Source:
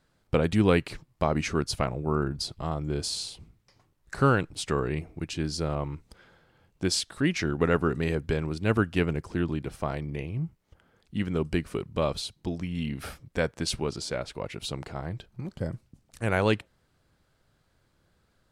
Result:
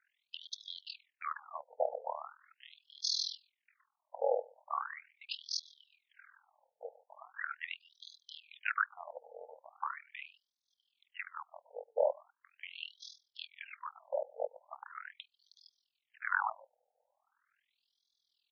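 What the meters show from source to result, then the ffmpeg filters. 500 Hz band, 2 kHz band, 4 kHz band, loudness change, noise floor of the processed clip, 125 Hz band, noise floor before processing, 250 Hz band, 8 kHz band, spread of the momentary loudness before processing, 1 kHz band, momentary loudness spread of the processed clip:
-10.5 dB, -6.5 dB, -6.5 dB, -10.5 dB, under -85 dBFS, under -40 dB, -70 dBFS, under -40 dB, -12.0 dB, 12 LU, -6.5 dB, 19 LU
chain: -filter_complex "[0:a]asplit=2[a][b];[b]adelay=134.1,volume=-26dB,highshelf=f=4k:g=-3.02[c];[a][c]amix=inputs=2:normalize=0,tremolo=f=41:d=0.889,afftfilt=real='re*between(b*sr/1024,610*pow(4700/610,0.5+0.5*sin(2*PI*0.4*pts/sr))/1.41,610*pow(4700/610,0.5+0.5*sin(2*PI*0.4*pts/sr))*1.41)':imag='im*between(b*sr/1024,610*pow(4700/610,0.5+0.5*sin(2*PI*0.4*pts/sr))/1.41,610*pow(4700/610,0.5+0.5*sin(2*PI*0.4*pts/sr))*1.41)':win_size=1024:overlap=0.75,volume=3.5dB"

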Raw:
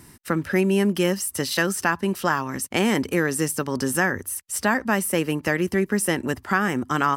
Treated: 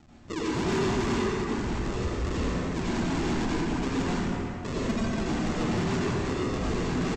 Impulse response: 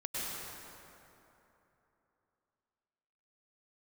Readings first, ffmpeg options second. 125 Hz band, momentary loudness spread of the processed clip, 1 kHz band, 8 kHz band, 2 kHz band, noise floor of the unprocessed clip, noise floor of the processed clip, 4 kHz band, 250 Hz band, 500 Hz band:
-1.0 dB, 4 LU, -7.5 dB, -13.5 dB, -11.5 dB, -50 dBFS, -36 dBFS, -5.5 dB, -4.0 dB, -6.0 dB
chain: -filter_complex "[0:a]asplit=2[a][b];[b]acompressor=threshold=-31dB:ratio=6,volume=2dB[c];[a][c]amix=inputs=2:normalize=0,lowpass=1.5k,aecho=1:1:2.7:0.82,aresample=16000,acrusher=samples=28:mix=1:aa=0.000001:lfo=1:lforange=16.8:lforate=2.5,aresample=44100,bandreject=f=50:t=h:w=6,bandreject=f=100:t=h:w=6,bandreject=f=150:t=h:w=6[d];[1:a]atrim=start_sample=2205,asetrate=57330,aresample=44100[e];[d][e]afir=irnorm=-1:irlink=0,asoftclip=type=tanh:threshold=-12dB,volume=-8.5dB"

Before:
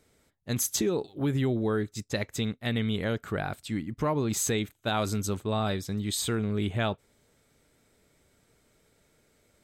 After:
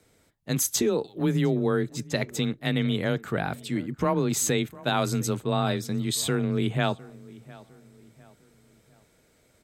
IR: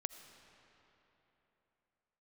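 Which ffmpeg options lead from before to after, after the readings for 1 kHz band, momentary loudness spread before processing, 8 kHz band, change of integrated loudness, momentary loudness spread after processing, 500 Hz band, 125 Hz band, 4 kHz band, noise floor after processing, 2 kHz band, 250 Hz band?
+3.5 dB, 6 LU, +3.0 dB, +3.0 dB, 6 LU, +3.5 dB, +2.5 dB, +3.0 dB, -64 dBFS, +3.0 dB, +3.0 dB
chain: -filter_complex "[0:a]afreqshift=21,asplit=2[a][b];[b]adelay=705,lowpass=f=2.3k:p=1,volume=-20.5dB,asplit=2[c][d];[d]adelay=705,lowpass=f=2.3k:p=1,volume=0.43,asplit=2[e][f];[f]adelay=705,lowpass=f=2.3k:p=1,volume=0.43[g];[c][e][g]amix=inputs=3:normalize=0[h];[a][h]amix=inputs=2:normalize=0,volume=3dB"

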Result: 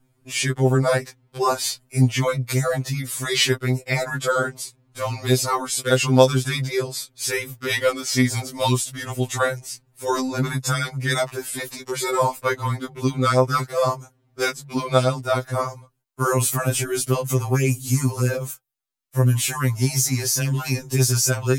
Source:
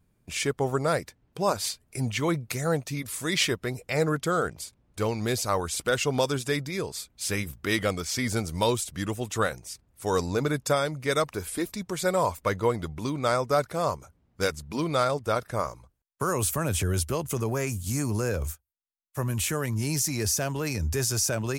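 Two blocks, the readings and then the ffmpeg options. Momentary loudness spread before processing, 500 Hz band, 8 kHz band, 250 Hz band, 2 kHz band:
7 LU, +4.5 dB, +5.5 dB, +5.0 dB, +5.5 dB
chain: -af "acontrast=30,afftfilt=real='re*2.45*eq(mod(b,6),0)':imag='im*2.45*eq(mod(b,6),0)':win_size=2048:overlap=0.75,volume=3dB"

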